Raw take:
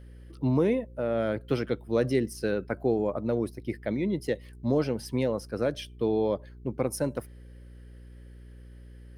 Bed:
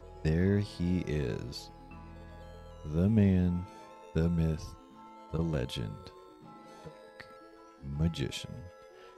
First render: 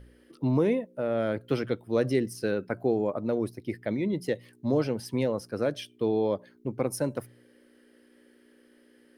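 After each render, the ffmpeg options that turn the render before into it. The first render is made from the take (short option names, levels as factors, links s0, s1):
-af "bandreject=f=60:t=h:w=4,bandreject=f=120:t=h:w=4,bandreject=f=180:t=h:w=4"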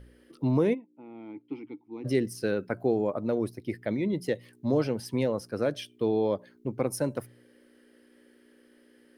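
-filter_complex "[0:a]asplit=3[s0][s1][s2];[s0]afade=t=out:st=0.73:d=0.02[s3];[s1]asplit=3[s4][s5][s6];[s4]bandpass=f=300:t=q:w=8,volume=1[s7];[s5]bandpass=f=870:t=q:w=8,volume=0.501[s8];[s6]bandpass=f=2240:t=q:w=8,volume=0.355[s9];[s7][s8][s9]amix=inputs=3:normalize=0,afade=t=in:st=0.73:d=0.02,afade=t=out:st=2.04:d=0.02[s10];[s2]afade=t=in:st=2.04:d=0.02[s11];[s3][s10][s11]amix=inputs=3:normalize=0"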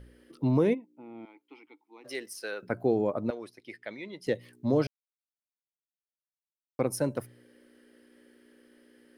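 -filter_complex "[0:a]asettb=1/sr,asplit=3[s0][s1][s2];[s0]atrim=end=1.254[s3];[s1]atrim=start=1.25:end=2.63,asetpts=PTS-STARTPTS,afade=t=in:d=0.004:c=qsin,afade=t=out:st=1.376:d=0.004:c=qsin,highpass=780[s4];[s2]atrim=start=2.626[s5];[s3][s4]acrossfade=d=0.004:c1=hsin:c2=qsin[s6];[s6][s5]acrossfade=d=0.004:c1=qsin:c2=hsin,asettb=1/sr,asplit=3[s7][s8][s9];[s7]atrim=end=3.304[s10];[s8]atrim=start=3.3:end=4.27,asetpts=PTS-STARTPTS,afade=t=in:d=0.004:c=qsin,afade=t=out:st=0.966:d=0.004:c=qsin,bandpass=f=2800:t=q:w=0.55[s11];[s9]atrim=start=4.266[s12];[s10][s11]acrossfade=d=0.004:c1=hsin:c2=qsin[s13];[s13][s12]acrossfade=d=0.004:c1=qsin:c2=hsin,asplit=3[s14][s15][s16];[s14]atrim=end=4.87,asetpts=PTS-STARTPTS,afade=t=out:st=4.866:d=0.004:c=hsin[s17];[s15]atrim=start=4.87:end=6.79,asetpts=PTS-STARTPTS,volume=0[s18];[s16]atrim=start=6.79,asetpts=PTS-STARTPTS,afade=t=in:d=0.004:c=hsin[s19];[s17][s18][s19]concat=n=3:v=0:a=1"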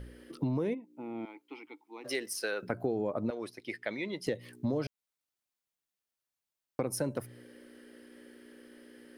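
-filter_complex "[0:a]asplit=2[s0][s1];[s1]alimiter=limit=0.0631:level=0:latency=1:release=21,volume=0.891[s2];[s0][s2]amix=inputs=2:normalize=0,acompressor=threshold=0.0316:ratio=4"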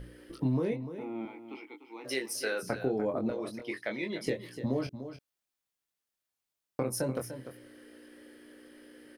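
-filter_complex "[0:a]asplit=2[s0][s1];[s1]adelay=23,volume=0.562[s2];[s0][s2]amix=inputs=2:normalize=0,aecho=1:1:296:0.282"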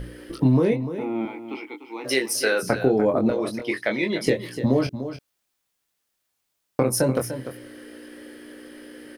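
-af "volume=3.55"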